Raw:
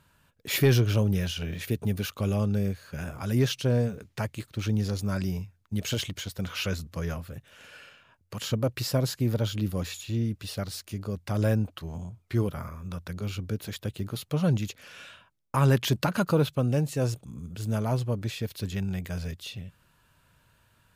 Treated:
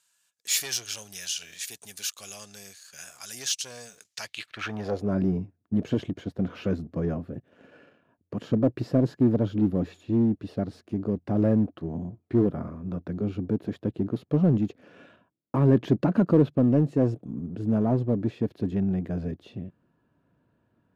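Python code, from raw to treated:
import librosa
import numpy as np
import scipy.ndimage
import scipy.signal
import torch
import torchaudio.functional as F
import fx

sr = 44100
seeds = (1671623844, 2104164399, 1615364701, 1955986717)

p1 = fx.leveller(x, sr, passes=1)
p2 = fx.filter_sweep_bandpass(p1, sr, from_hz=7100.0, to_hz=290.0, start_s=4.11, end_s=5.17, q=1.9)
p3 = np.clip(p2, -10.0 ** (-31.0 / 20.0), 10.0 ** (-31.0 / 20.0))
p4 = p2 + (p3 * librosa.db_to_amplitude(-9.0))
p5 = fx.small_body(p4, sr, hz=(700.0, 1700.0), ring_ms=45, db=6)
y = p5 * librosa.db_to_amplitude(6.5)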